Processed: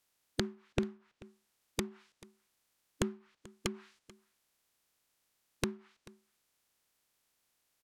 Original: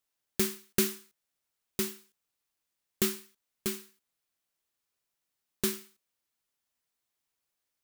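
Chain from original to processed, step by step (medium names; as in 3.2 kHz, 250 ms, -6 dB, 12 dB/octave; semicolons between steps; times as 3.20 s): spectral peaks clipped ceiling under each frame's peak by 14 dB; low-pass that closes with the level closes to 370 Hz, closed at -29.5 dBFS; in parallel at 0 dB: peak limiter -25 dBFS, peak gain reduction 8.5 dB; on the sum: delay 437 ms -21.5 dB; trim +1.5 dB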